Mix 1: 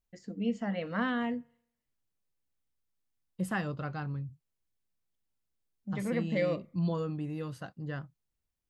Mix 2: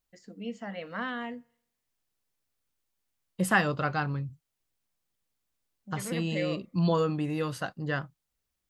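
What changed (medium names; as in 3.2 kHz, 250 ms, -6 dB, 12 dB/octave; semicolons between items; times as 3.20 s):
second voice +12.0 dB; master: add bass shelf 360 Hz -9.5 dB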